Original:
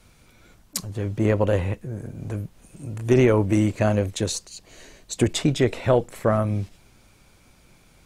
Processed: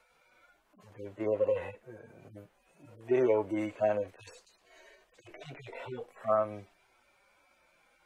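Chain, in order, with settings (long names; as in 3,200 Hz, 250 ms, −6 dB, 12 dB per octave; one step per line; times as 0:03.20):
harmonic-percussive split with one part muted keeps harmonic
three-way crossover with the lows and the highs turned down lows −24 dB, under 410 Hz, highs −12 dB, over 2,700 Hz
level −1 dB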